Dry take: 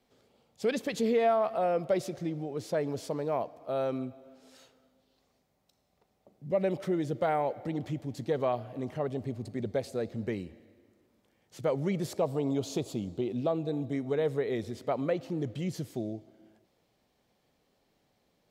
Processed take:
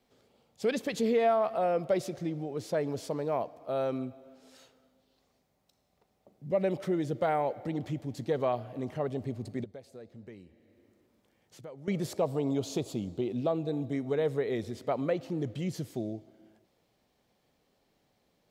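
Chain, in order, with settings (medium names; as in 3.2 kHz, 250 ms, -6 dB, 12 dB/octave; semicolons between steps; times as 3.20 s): 9.64–11.88 s: compression 2:1, threshold -57 dBFS, peak gain reduction 17.5 dB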